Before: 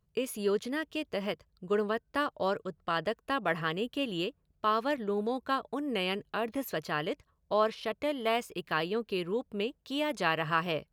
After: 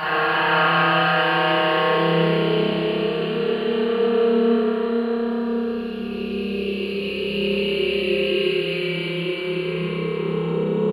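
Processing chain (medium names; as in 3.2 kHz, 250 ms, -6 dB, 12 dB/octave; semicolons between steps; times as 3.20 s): Paulstretch 19×, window 0.25 s, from 8.75 s; early reflections 28 ms -9 dB, 59 ms -7.5 dB; spring tank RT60 3.5 s, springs 30 ms, chirp 30 ms, DRR -9 dB; trim +2 dB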